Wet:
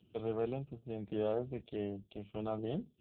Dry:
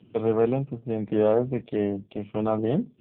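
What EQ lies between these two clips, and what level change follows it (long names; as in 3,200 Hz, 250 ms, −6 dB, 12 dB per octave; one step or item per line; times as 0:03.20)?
graphic EQ with 10 bands 125 Hz −10 dB, 250 Hz −11 dB, 500 Hz −8 dB, 1,000 Hz −10 dB, 2,000 Hz −12 dB
−1.0 dB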